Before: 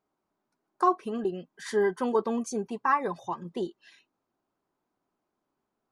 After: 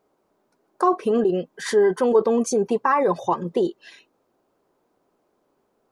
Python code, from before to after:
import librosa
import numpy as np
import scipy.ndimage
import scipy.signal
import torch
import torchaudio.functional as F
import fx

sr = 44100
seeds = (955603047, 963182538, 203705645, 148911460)

p1 = fx.peak_eq(x, sr, hz=490.0, db=9.5, octaves=0.84)
p2 = fx.over_compress(p1, sr, threshold_db=-28.0, ratio=-1.0)
y = p1 + (p2 * librosa.db_to_amplitude(1.0))